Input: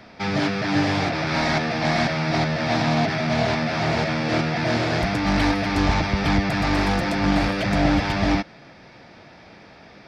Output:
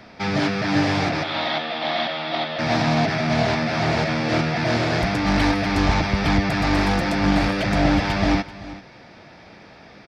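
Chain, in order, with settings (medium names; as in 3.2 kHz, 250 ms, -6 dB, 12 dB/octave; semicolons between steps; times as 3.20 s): 1.23–2.59 s: cabinet simulation 400–3900 Hz, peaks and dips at 420 Hz -8 dB, 960 Hz -3 dB, 1.6 kHz -6 dB, 2.3 kHz -5 dB, 3.4 kHz +9 dB; delay 385 ms -17 dB; trim +1 dB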